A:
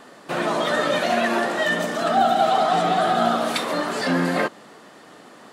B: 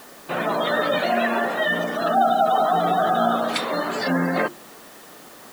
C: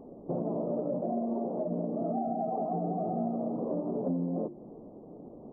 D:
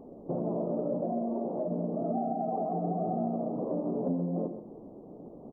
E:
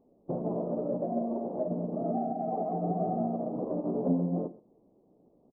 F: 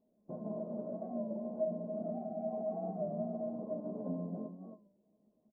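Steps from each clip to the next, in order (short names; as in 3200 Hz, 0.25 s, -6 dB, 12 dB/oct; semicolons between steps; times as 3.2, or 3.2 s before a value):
spectral gate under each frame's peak -25 dB strong; requantised 8-bit, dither triangular; notches 50/100/150/200/250/300/350 Hz
Gaussian blur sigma 16 samples; compressor, threshold -34 dBFS, peak gain reduction 12.5 dB; gain +5 dB
echo 0.132 s -9.5 dB
doubler 16 ms -13.5 dB; in parallel at +1 dB: limiter -26.5 dBFS, peak gain reduction 7.5 dB; on the sum: upward expander 2.5:1, over -38 dBFS
resonator 210 Hz, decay 0.17 s, harmonics odd, mix 90%; echo 0.284 s -8 dB; record warp 33 1/3 rpm, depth 100 cents; gain +2 dB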